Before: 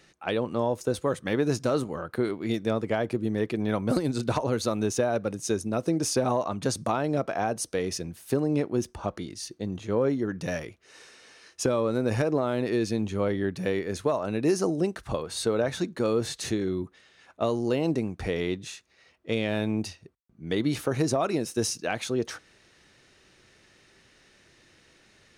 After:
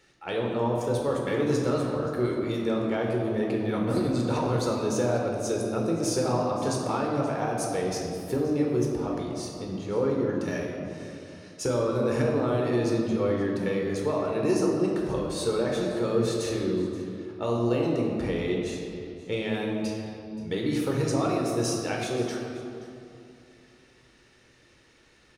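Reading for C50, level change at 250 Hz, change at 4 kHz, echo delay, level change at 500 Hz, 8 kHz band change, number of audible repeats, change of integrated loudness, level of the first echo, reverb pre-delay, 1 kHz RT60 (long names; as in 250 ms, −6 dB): 1.5 dB, +1.0 dB, −1.5 dB, 527 ms, +1.0 dB, −2.0 dB, 1, +0.5 dB, −17.0 dB, 11 ms, 2.6 s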